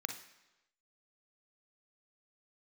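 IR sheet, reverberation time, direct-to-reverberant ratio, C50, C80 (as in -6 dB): 1.0 s, 5.5 dB, 7.5 dB, 13.0 dB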